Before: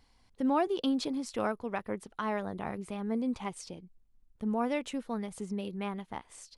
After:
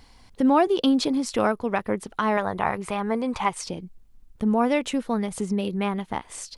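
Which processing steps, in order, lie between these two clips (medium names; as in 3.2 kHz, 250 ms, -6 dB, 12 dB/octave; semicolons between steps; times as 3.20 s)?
2.37–3.64 s: graphic EQ 250/1000/2000 Hz -7/+7/+4 dB; in parallel at -1.5 dB: compression, threshold -42 dBFS, peak gain reduction 17 dB; on the sum: trim +8 dB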